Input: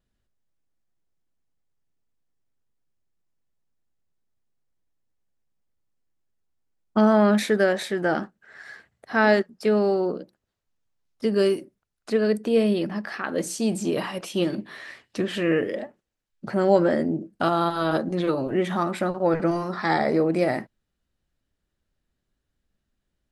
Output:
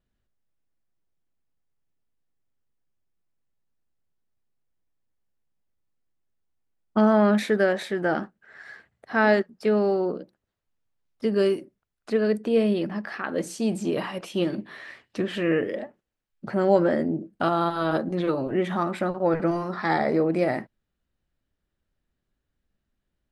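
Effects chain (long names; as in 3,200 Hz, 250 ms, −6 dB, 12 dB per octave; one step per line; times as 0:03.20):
bass and treble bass 0 dB, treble −6 dB
level −1 dB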